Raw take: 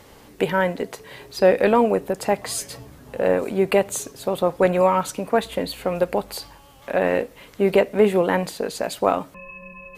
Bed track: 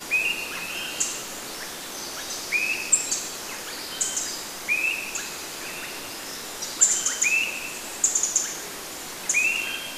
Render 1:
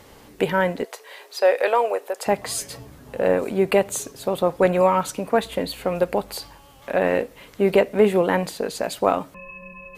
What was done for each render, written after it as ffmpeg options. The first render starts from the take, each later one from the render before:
-filter_complex "[0:a]asettb=1/sr,asplit=3[a][b][c];[a]atrim=end=0.844[d];[b]atrim=start=0.84:end=2.26,asetpts=PTS-STARTPTS,afade=t=in:d=0.004:c=qsin,afade=t=out:st=1.416:d=0.004:c=qsin,highpass=f=480:w=0.5412,highpass=f=480:w=1.3066[e];[c]atrim=start=2.256[f];[d][e]acrossfade=d=0.004:c1=hsin:c2=qsin[g];[g][f]acrossfade=d=0.004:c1=qsin:c2=hsin"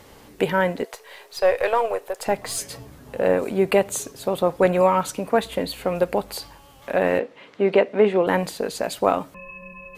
-filter_complex "[0:a]asettb=1/sr,asplit=3[a][b][c];[a]atrim=end=0.934[d];[b]atrim=start=0.93:end=2.57,asetpts=PTS-STARTPTS,afade=t=in:d=0.004:c=qsin,afade=t=out:st=1.636:d=0.004:c=qsin,aeval=exprs='if(lt(val(0),0),0.708*val(0),val(0))':c=same[e];[c]atrim=start=2.566[f];[d][e]acrossfade=d=0.004:c1=hsin:c2=qsin[g];[g][f]acrossfade=d=0.004:c1=qsin:c2=hsin,asettb=1/sr,asplit=3[h][i][j];[h]atrim=end=7.194[k];[i]atrim=start=7.19:end=8.27,asetpts=PTS-STARTPTS,afade=t=in:d=0.004:c=qsin,afade=t=out:st=1.076:d=0.004:c=qsin,highpass=210,lowpass=3.8k[l];[j]atrim=start=8.266[m];[k][l]acrossfade=d=0.004:c1=hsin:c2=qsin[n];[n][m]acrossfade=d=0.004:c1=qsin:c2=hsin"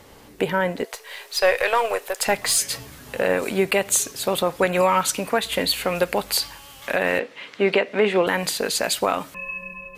-filter_complex "[0:a]acrossover=split=1400[a][b];[b]dynaudnorm=f=730:g=3:m=11.5dB[c];[a][c]amix=inputs=2:normalize=0,alimiter=limit=-8.5dB:level=0:latency=1:release=160"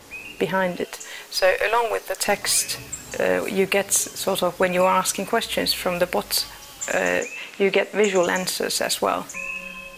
-filter_complex "[1:a]volume=-13.5dB[a];[0:a][a]amix=inputs=2:normalize=0"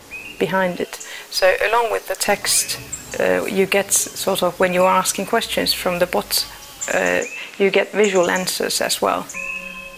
-af "volume=3.5dB"

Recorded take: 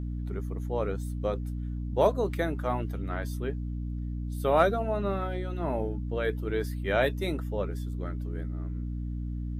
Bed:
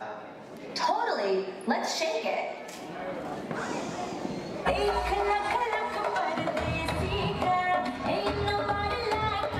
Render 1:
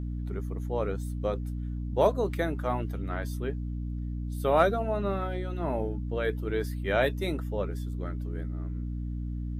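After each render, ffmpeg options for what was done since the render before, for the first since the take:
-af anull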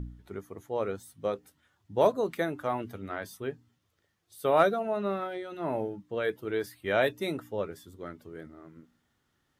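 -af "bandreject=f=60:t=h:w=4,bandreject=f=120:t=h:w=4,bandreject=f=180:t=h:w=4,bandreject=f=240:t=h:w=4,bandreject=f=300:t=h:w=4"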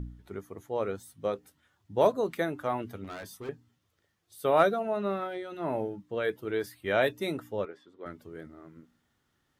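-filter_complex "[0:a]asettb=1/sr,asplit=3[a][b][c];[a]atrim=end=3.044[d];[b]atrim=start=3.04:end=3.49,asetpts=PTS-STARTPTS,afade=t=in:d=0.004:c=qsin,afade=t=out:st=0.446:d=0.004:c=qsin,asoftclip=type=hard:threshold=-37dB[e];[c]atrim=start=3.486[f];[d][e]acrossfade=d=0.004:c1=hsin:c2=qsin[g];[g][f]acrossfade=d=0.004:c1=qsin:c2=hsin,asettb=1/sr,asplit=3[h][i][j];[h]atrim=end=7.654[k];[i]atrim=start=7.65:end=8.06,asetpts=PTS-STARTPTS,afade=t=in:d=0.004:c=qsin,afade=t=out:st=0.406:d=0.004:c=qsin,highpass=350,lowpass=2.7k[l];[j]atrim=start=8.056[m];[k][l]acrossfade=d=0.004:c1=hsin:c2=qsin[n];[n][m]acrossfade=d=0.004:c1=qsin:c2=hsin"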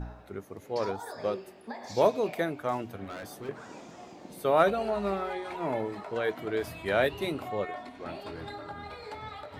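-filter_complex "[1:a]volume=-13dB[a];[0:a][a]amix=inputs=2:normalize=0"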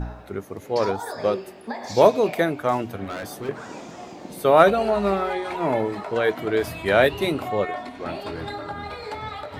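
-af "volume=8.5dB"

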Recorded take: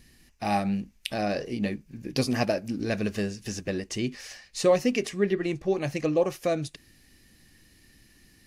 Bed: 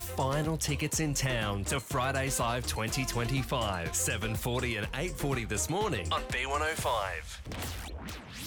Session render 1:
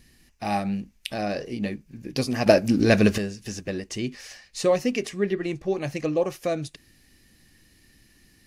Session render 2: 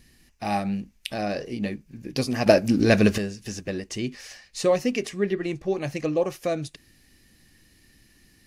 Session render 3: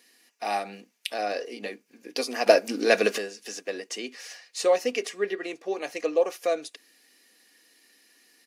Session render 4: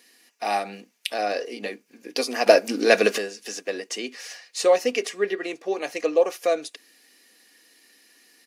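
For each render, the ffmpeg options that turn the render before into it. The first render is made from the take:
-filter_complex "[0:a]asplit=3[a][b][c];[a]atrim=end=2.462[d];[b]atrim=start=2.458:end=3.182,asetpts=PTS-STARTPTS,volume=10.5dB[e];[c]atrim=start=3.178[f];[d][e]acrossfade=d=0.004:c1=hsin:c2=hsin[g];[g][f]acrossfade=d=0.004:c1=hsin:c2=hsin"
-af anull
-af "highpass=f=360:w=0.5412,highpass=f=360:w=1.3066,aecho=1:1:4.2:0.37"
-af "volume=3.5dB,alimiter=limit=-1dB:level=0:latency=1"

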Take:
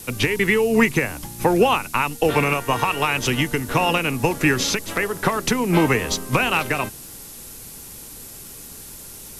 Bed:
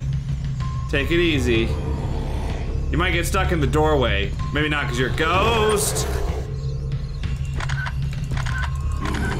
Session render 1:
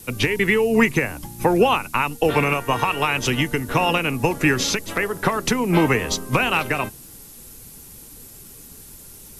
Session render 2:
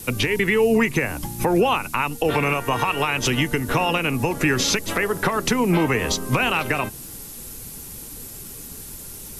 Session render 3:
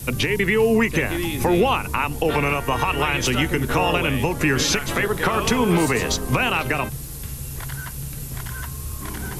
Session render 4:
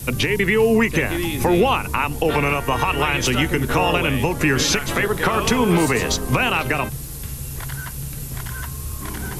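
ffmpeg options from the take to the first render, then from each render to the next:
-af "afftdn=nr=6:nf=-39"
-filter_complex "[0:a]asplit=2[a][b];[b]acompressor=threshold=-26dB:ratio=6,volume=-1.5dB[c];[a][c]amix=inputs=2:normalize=0,alimiter=limit=-10dB:level=0:latency=1:release=134"
-filter_complex "[1:a]volume=-8dB[a];[0:a][a]amix=inputs=2:normalize=0"
-af "volume=1.5dB"

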